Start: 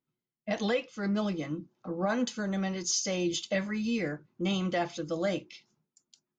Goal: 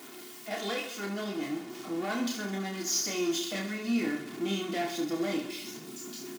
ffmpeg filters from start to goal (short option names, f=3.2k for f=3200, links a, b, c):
-af "aeval=exprs='val(0)+0.5*0.0188*sgn(val(0))':c=same,aeval=exprs='0.141*(cos(1*acos(clip(val(0)/0.141,-1,1)))-cos(1*PI/2))+0.0126*(cos(4*acos(clip(val(0)/0.141,-1,1)))-cos(4*PI/2))+0.0224*(cos(6*acos(clip(val(0)/0.141,-1,1)))-cos(6*PI/2))':c=same,asubboost=boost=6:cutoff=250,highpass=f=190:w=0.5412,highpass=f=190:w=1.3066,lowshelf=f=420:g=-5.5,aecho=1:1:2.8:0.62,aecho=1:1:30|72|130.8|213.1|328.4:0.631|0.398|0.251|0.158|0.1,volume=-5dB"